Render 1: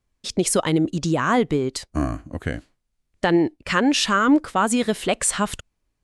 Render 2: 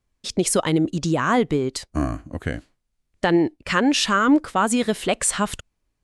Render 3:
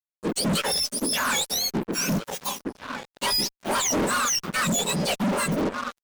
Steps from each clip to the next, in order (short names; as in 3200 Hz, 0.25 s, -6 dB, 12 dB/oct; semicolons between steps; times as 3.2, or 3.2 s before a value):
nothing audible
spectrum mirrored in octaves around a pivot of 1300 Hz; outdoor echo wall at 280 m, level -6 dB; fuzz box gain 29 dB, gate -38 dBFS; gain -8.5 dB